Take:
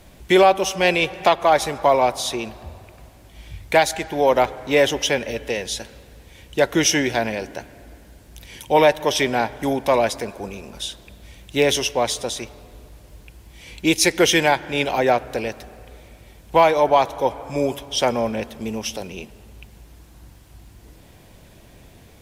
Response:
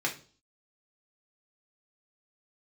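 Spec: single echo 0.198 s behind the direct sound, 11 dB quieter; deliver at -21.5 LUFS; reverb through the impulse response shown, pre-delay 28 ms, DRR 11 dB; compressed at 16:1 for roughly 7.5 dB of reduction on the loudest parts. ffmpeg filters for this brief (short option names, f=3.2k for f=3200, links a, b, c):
-filter_complex "[0:a]acompressor=threshold=-17dB:ratio=16,aecho=1:1:198:0.282,asplit=2[a][b];[1:a]atrim=start_sample=2205,adelay=28[c];[b][c]afir=irnorm=-1:irlink=0,volume=-18.5dB[d];[a][d]amix=inputs=2:normalize=0,volume=2dB"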